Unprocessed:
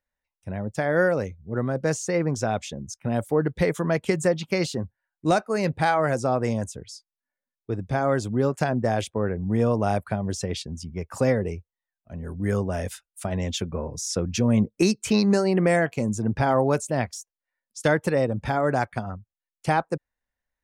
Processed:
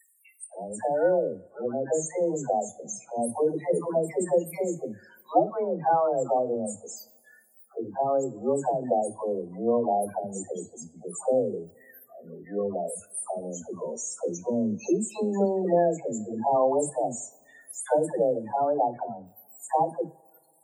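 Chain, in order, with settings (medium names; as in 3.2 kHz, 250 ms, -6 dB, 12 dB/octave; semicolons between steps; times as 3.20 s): zero-crossing glitches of -22.5 dBFS; frequency weighting A; spectral noise reduction 25 dB; high-pass 110 Hz 24 dB/octave; high-order bell 2.6 kHz -15.5 dB 2.4 oct; upward compressor, threshold -44 dBFS; phase dispersion lows, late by 139 ms, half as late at 490 Hz; loudest bins only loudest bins 16; two-slope reverb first 0.35 s, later 2.1 s, from -21 dB, DRR 13 dB; trim +2.5 dB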